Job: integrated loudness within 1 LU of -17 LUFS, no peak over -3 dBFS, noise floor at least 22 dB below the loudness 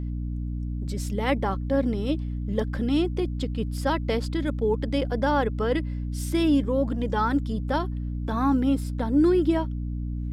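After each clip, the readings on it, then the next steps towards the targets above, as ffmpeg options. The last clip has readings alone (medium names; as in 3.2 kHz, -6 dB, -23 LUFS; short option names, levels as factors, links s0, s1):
hum 60 Hz; highest harmonic 300 Hz; hum level -27 dBFS; loudness -26.0 LUFS; peak level -11.0 dBFS; loudness target -17.0 LUFS
-> -af "bandreject=f=60:t=h:w=6,bandreject=f=120:t=h:w=6,bandreject=f=180:t=h:w=6,bandreject=f=240:t=h:w=6,bandreject=f=300:t=h:w=6"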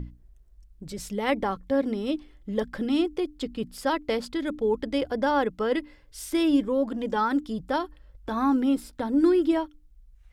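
hum not found; loudness -26.5 LUFS; peak level -11.0 dBFS; loudness target -17.0 LUFS
-> -af "volume=2.99,alimiter=limit=0.708:level=0:latency=1"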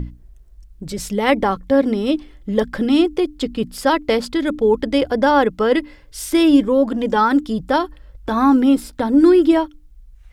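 loudness -17.5 LUFS; peak level -3.0 dBFS; noise floor -46 dBFS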